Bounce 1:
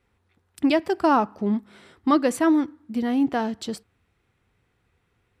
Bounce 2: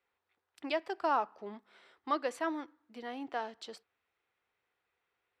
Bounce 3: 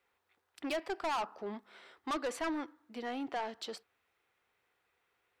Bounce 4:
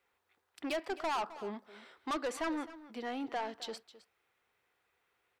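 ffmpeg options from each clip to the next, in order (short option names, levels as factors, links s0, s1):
-filter_complex "[0:a]acrossover=split=420 5800:gain=0.0794 1 0.251[s0][s1][s2];[s0][s1][s2]amix=inputs=3:normalize=0,volume=0.355"
-af "asoftclip=type=tanh:threshold=0.0158,volume=1.78"
-af "aecho=1:1:262:0.15"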